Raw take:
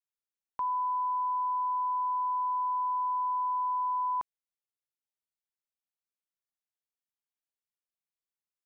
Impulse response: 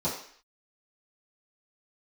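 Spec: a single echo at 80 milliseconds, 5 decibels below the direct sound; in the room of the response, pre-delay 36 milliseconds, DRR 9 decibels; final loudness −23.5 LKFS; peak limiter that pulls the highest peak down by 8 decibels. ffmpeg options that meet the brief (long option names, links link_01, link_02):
-filter_complex "[0:a]alimiter=level_in=11dB:limit=-24dB:level=0:latency=1,volume=-11dB,aecho=1:1:80:0.562,asplit=2[link_01][link_02];[1:a]atrim=start_sample=2205,adelay=36[link_03];[link_02][link_03]afir=irnorm=-1:irlink=0,volume=-17.5dB[link_04];[link_01][link_04]amix=inputs=2:normalize=0,volume=11.5dB"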